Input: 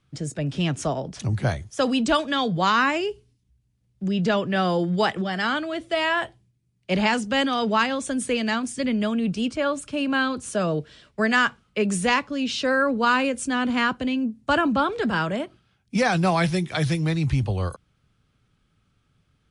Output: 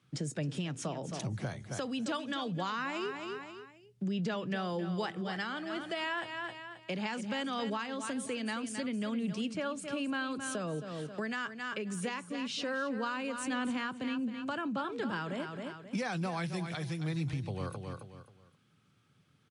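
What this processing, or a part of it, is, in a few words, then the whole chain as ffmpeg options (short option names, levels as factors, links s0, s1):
podcast mastering chain: -af "highpass=f=110:w=0.5412,highpass=f=110:w=1.3066,equalizer=f=650:t=o:w=0.28:g=-3.5,aecho=1:1:267|534|801:0.251|0.0728|0.0211,deesser=0.5,acompressor=threshold=0.02:ratio=3,alimiter=level_in=1.12:limit=0.0631:level=0:latency=1:release=468,volume=0.891" -ar 48000 -c:a libmp3lame -b:a 128k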